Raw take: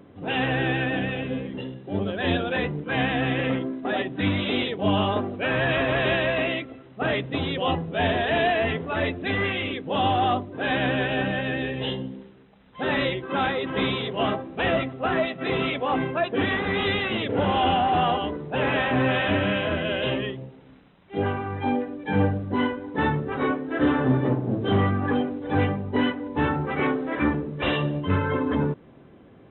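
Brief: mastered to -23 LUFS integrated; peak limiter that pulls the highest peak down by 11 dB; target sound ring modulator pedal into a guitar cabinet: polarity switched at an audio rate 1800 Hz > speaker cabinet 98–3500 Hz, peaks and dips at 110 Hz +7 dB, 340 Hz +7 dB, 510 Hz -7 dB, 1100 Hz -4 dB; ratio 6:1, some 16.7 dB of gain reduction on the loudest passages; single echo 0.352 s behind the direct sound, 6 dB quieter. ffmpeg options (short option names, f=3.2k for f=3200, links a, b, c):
-af "acompressor=threshold=-36dB:ratio=6,alimiter=level_in=12dB:limit=-24dB:level=0:latency=1,volume=-12dB,aecho=1:1:352:0.501,aeval=exprs='val(0)*sgn(sin(2*PI*1800*n/s))':c=same,highpass=98,equalizer=f=110:t=q:w=4:g=7,equalizer=f=340:t=q:w=4:g=7,equalizer=f=510:t=q:w=4:g=-7,equalizer=f=1.1k:t=q:w=4:g=-4,lowpass=f=3.5k:w=0.5412,lowpass=f=3.5k:w=1.3066,volume=19.5dB"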